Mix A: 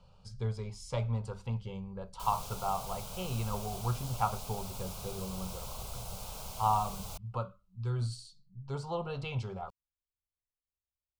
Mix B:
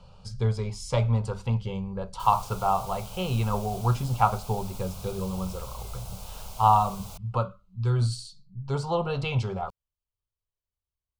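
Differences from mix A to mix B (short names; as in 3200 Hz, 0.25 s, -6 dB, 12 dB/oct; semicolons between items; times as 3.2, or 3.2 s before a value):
speech +9.0 dB; first sound +9.0 dB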